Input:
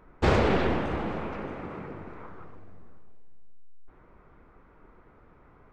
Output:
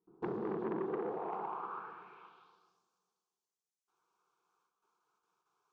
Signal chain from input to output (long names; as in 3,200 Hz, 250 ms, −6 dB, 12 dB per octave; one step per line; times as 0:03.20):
noise gate with hold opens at −46 dBFS
low-shelf EQ 91 Hz −12 dB
downward compressor 2.5 to 1, threshold −32 dBFS, peak gain reduction 8.5 dB
phaser with its sweep stopped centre 390 Hz, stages 8
reverb whose tail is shaped and stops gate 290 ms rising, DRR 5.5 dB
band-pass filter sweep 280 Hz → 6,400 Hz, 0:00.70–0:02.83
saturating transformer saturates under 830 Hz
level +6 dB